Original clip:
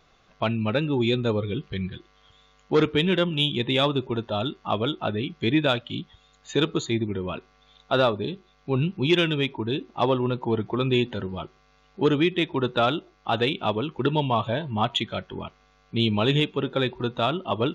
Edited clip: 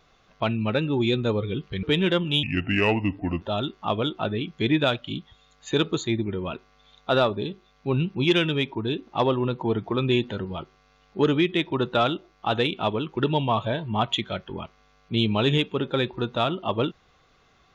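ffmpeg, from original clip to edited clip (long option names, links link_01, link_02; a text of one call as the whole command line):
ffmpeg -i in.wav -filter_complex "[0:a]asplit=4[link_01][link_02][link_03][link_04];[link_01]atrim=end=1.832[link_05];[link_02]atrim=start=2.888:end=3.494[link_06];[link_03]atrim=start=3.49:end=4.24,asetpts=PTS-STARTPTS,asetrate=33516,aresample=44100[link_07];[link_04]atrim=start=4.236[link_08];[link_05][link_06]acrossfade=duration=0.004:curve1=hsin:curve2=hsin[link_09];[link_09][link_07]acrossfade=duration=0.004:curve1=hsin:curve2=hsin[link_10];[link_10][link_08]acrossfade=duration=0.004:curve1=hsin:curve2=hsin" out.wav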